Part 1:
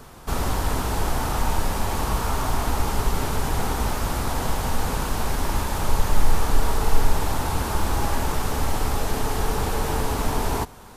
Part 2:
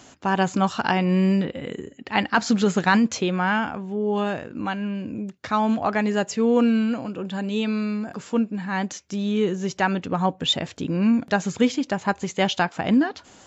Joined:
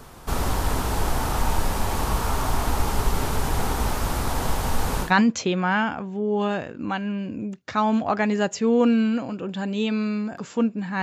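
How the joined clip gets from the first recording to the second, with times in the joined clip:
part 1
0:05.06: continue with part 2 from 0:02.82, crossfade 0.12 s

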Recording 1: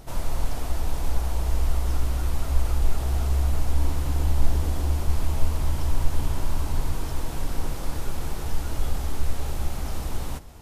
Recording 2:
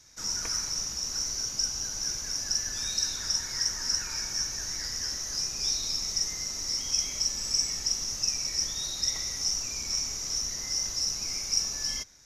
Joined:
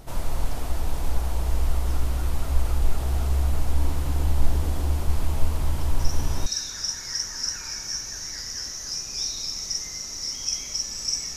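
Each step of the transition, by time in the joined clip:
recording 1
0:05.99: mix in recording 2 from 0:02.45 0.47 s −10 dB
0:06.46: continue with recording 2 from 0:02.92

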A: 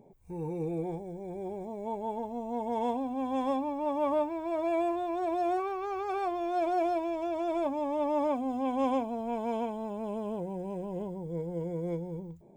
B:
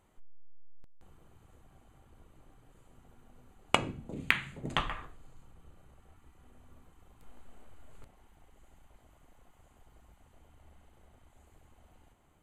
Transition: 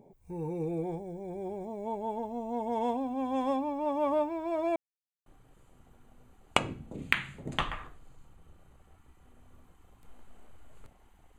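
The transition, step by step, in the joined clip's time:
A
0:04.76–0:05.26: silence
0:05.26: continue with B from 0:02.44

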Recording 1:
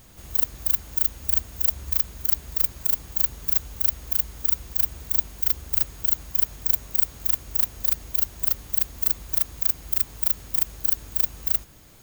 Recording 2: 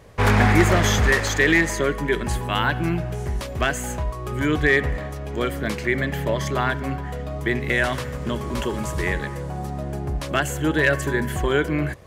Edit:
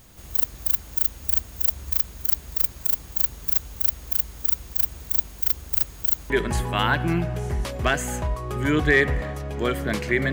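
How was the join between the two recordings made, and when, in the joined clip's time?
recording 1
0:06.30: continue with recording 2 from 0:02.06

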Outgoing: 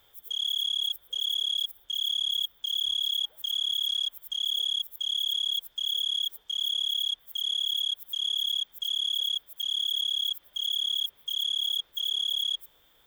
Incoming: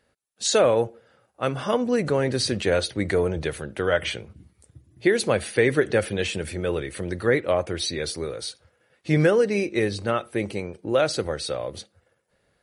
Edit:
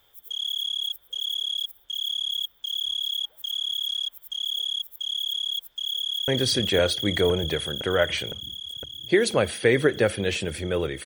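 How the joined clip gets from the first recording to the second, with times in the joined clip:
outgoing
0:05.59–0:06.28: delay throw 510 ms, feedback 80%, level −0.5 dB
0:06.28: continue with incoming from 0:02.21

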